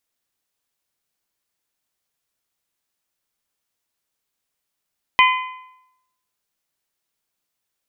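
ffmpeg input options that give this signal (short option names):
-f lavfi -i "aevalsrc='0.316*pow(10,-3*t/0.84)*sin(2*PI*1020*t)+0.237*pow(10,-3*t/0.682)*sin(2*PI*2040*t)+0.178*pow(10,-3*t/0.646)*sin(2*PI*2448*t)+0.133*pow(10,-3*t/0.604)*sin(2*PI*3060*t)':d=1.55:s=44100"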